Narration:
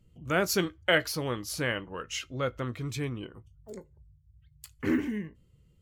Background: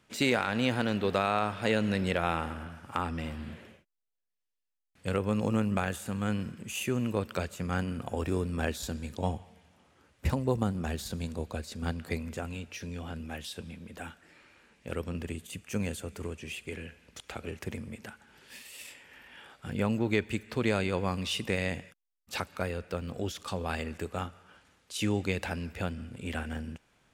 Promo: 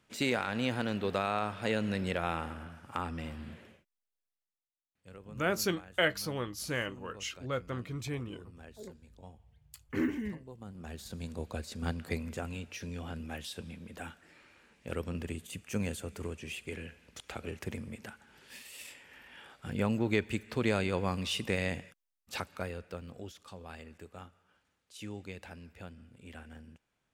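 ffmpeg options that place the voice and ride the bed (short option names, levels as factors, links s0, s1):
-filter_complex "[0:a]adelay=5100,volume=0.631[s0];[1:a]volume=5.96,afade=t=out:st=4.23:d=0.48:silence=0.141254,afade=t=in:st=10.59:d=1.06:silence=0.105925,afade=t=out:st=22.03:d=1.37:silence=0.251189[s1];[s0][s1]amix=inputs=2:normalize=0"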